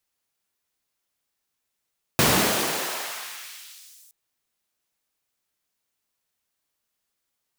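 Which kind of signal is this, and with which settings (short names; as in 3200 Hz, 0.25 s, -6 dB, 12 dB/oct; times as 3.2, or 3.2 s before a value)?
swept filtered noise pink, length 1.92 s highpass, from 100 Hz, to 8100 Hz, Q 0.86, exponential, gain ramp -30 dB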